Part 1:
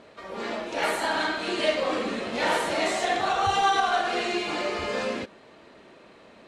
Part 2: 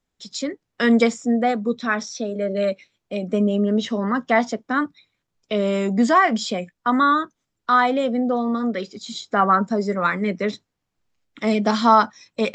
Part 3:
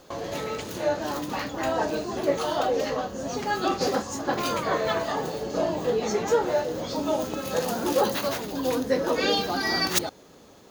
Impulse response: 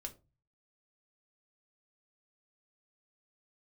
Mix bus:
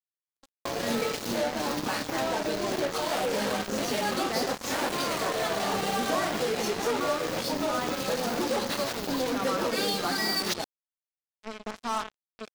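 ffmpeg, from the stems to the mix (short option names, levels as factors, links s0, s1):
-filter_complex "[0:a]acrusher=bits=3:mix=0:aa=0.5,adelay=2300,volume=0.596[s0];[1:a]volume=0.141,asplit=2[s1][s2];[s2]volume=0.355[s3];[2:a]aexciter=amount=1.7:drive=5.1:freq=4200,acrossover=split=6300[s4][s5];[s5]acompressor=threshold=0.00562:ratio=4:attack=1:release=60[s6];[s4][s6]amix=inputs=2:normalize=0,adelay=550,volume=1.19[s7];[s0][s7]amix=inputs=2:normalize=0,aeval=exprs='0.178*(abs(mod(val(0)/0.178+3,4)-2)-1)':c=same,acompressor=threshold=0.0447:ratio=4,volume=1[s8];[s3]aecho=0:1:86|172|258|344|430:1|0.38|0.144|0.0549|0.0209[s9];[s1][s8][s9]amix=inputs=3:normalize=0,highpass=f=110:w=0.5412,highpass=f=110:w=1.3066,acrusher=bits=4:mix=0:aa=0.5"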